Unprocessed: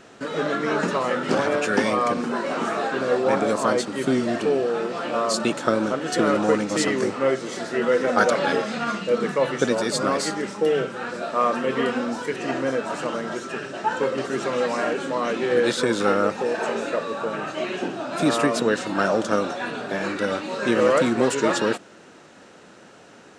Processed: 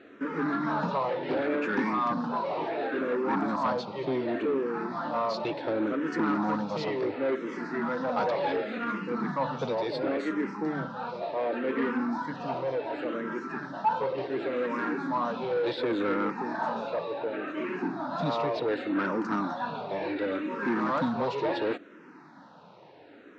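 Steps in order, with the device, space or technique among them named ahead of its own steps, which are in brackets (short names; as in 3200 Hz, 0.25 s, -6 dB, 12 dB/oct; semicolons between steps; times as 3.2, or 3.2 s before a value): barber-pole phaser into a guitar amplifier (endless phaser -0.69 Hz; soft clip -21.5 dBFS, distortion -12 dB; speaker cabinet 96–4100 Hz, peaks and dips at 160 Hz +4 dB, 290 Hz +7 dB, 930 Hz +8 dB, 3000 Hz -6 dB); gain -3 dB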